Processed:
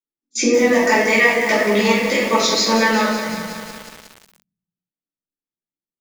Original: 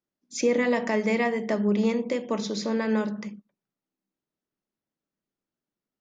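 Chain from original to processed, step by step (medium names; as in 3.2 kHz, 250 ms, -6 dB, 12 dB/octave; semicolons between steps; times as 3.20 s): reverb removal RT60 0.83 s; gate -39 dBFS, range -24 dB; reverb removal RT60 0.66 s; 0.86–3.28 s: tilt shelf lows -8.5 dB, about 650 Hz; compression 6:1, threshold -27 dBFS, peak gain reduction 9 dB; simulated room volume 280 m³, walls mixed, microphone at 3.6 m; bit-crushed delay 181 ms, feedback 80%, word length 6-bit, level -9 dB; trim +5 dB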